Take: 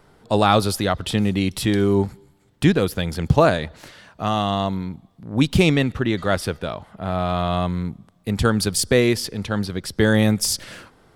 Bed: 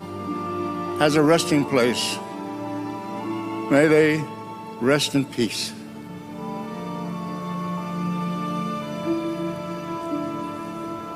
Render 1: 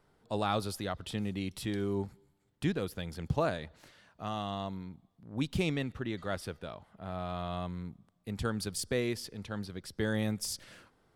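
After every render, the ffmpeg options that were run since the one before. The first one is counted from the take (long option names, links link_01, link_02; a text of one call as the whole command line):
ffmpeg -i in.wav -af "volume=-15dB" out.wav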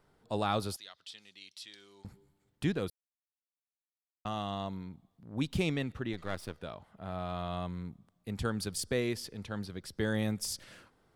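ffmpeg -i in.wav -filter_complex "[0:a]asettb=1/sr,asplit=3[link_01][link_02][link_03];[link_01]atrim=end=0.764[link_04];[link_02]atrim=start=0.76:end=2.05,asetpts=PTS-STARTPTS,afade=type=in:duration=0.004:curve=qsin,afade=type=out:start_time=1.286:duration=0.004:curve=qsin,bandpass=frequency=4700:width_type=q:width=1.6[link_05];[link_03]atrim=start=2.046[link_06];[link_04][link_05]acrossfade=duration=0.004:curve1=hsin:curve2=qsin[link_07];[link_07][link_06]acrossfade=duration=0.004:curve1=qsin:curve2=hsin,asettb=1/sr,asplit=3[link_08][link_09][link_10];[link_08]atrim=end=6.134[link_11];[link_09]atrim=start=6.13:end=6.6,asetpts=PTS-STARTPTS,afade=type=in:duration=0.004:curve=qsin,afade=type=out:start_time=0.466:duration=0.004:curve=qsin,aeval=exprs='if(lt(val(0),0),0.251*val(0),val(0))':channel_layout=same[link_12];[link_10]atrim=start=6.596[link_13];[link_11][link_12]acrossfade=duration=0.004:curve1=hsin:curve2=qsin[link_14];[link_14][link_13]acrossfade=duration=0.004:curve1=qsin:curve2=hsin,asplit=3[link_15][link_16][link_17];[link_15]atrim=end=2.9,asetpts=PTS-STARTPTS,afade=type=out:start_time=2.896:duration=0.004:curve=hsin[link_18];[link_16]atrim=start=2.9:end=4.25,asetpts=PTS-STARTPTS,volume=0[link_19];[link_17]atrim=start=4.25,asetpts=PTS-STARTPTS,afade=type=in:duration=0.004:curve=hsin[link_20];[link_18][link_19][link_20]concat=n=3:v=0:a=1" out.wav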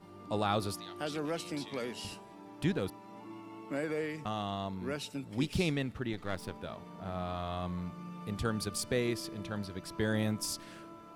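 ffmpeg -i in.wav -i bed.wav -filter_complex "[1:a]volume=-19dB[link_01];[0:a][link_01]amix=inputs=2:normalize=0" out.wav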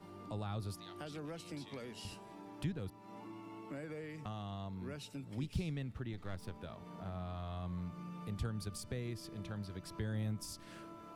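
ffmpeg -i in.wav -filter_complex "[0:a]acrossover=split=150[link_01][link_02];[link_02]acompressor=threshold=-48dB:ratio=3[link_03];[link_01][link_03]amix=inputs=2:normalize=0" out.wav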